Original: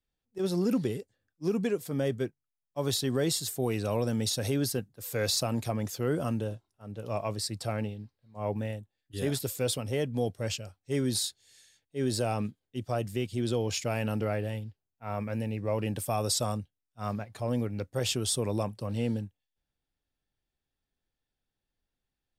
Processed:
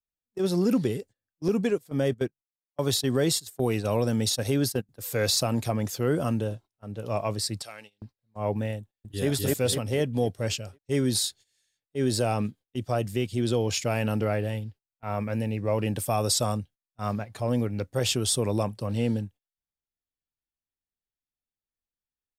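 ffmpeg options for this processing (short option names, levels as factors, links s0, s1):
-filter_complex "[0:a]asettb=1/sr,asplit=3[s0][s1][s2];[s0]atrim=end=1.484[s3];[s1]atrim=start=1.48:end=4.89,asetpts=PTS-STARTPTS,afade=t=in:d=0.004:c=qsin,afade=t=out:st=3.406:d=0.004:c=qsin,agate=range=0.141:threshold=0.0224:ratio=16:release=100:detection=peak[s4];[s2]atrim=start=4.886[s5];[s3][s4]acrossfade=d=0.004:c1=hsin:c2=qsin[s6];[s6][s5]acrossfade=d=0.004:c1=qsin:c2=hsin,asettb=1/sr,asplit=3[s7][s8][s9];[s7]atrim=end=7.624[s10];[s8]atrim=start=7.62:end=8.02,asetpts=PTS-STARTPTS,afade=t=in:d=0.004:c=qsin,afade=t=out:st=0.396:d=0.004:c=qsin,bandpass=f=6000:t=q:w=0.56[s11];[s9]atrim=start=8.016[s12];[s10][s11]acrossfade=d=0.004:c1=hsin:c2=qsin[s13];[s13][s12]acrossfade=d=0.004:c1=qsin:c2=hsin,asplit=2[s14][s15];[s15]afade=t=in:st=8.79:d=0.01,afade=t=out:st=9.28:d=0.01,aecho=0:1:250|500|750|1000|1250|1500:1|0.45|0.2025|0.091125|0.0410062|0.0184528[s16];[s14][s16]amix=inputs=2:normalize=0,agate=range=0.126:threshold=0.00316:ratio=16:detection=peak,volume=1.58"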